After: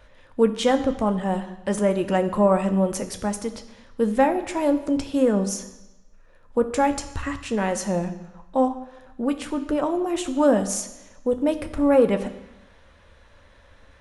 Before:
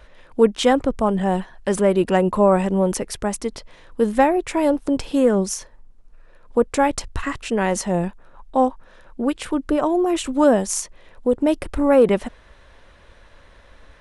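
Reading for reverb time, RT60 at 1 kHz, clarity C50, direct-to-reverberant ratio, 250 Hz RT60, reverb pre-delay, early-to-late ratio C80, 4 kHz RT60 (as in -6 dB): 1.0 s, 1.1 s, 12.0 dB, 7.0 dB, 1.0 s, 3 ms, 14.0 dB, 1.1 s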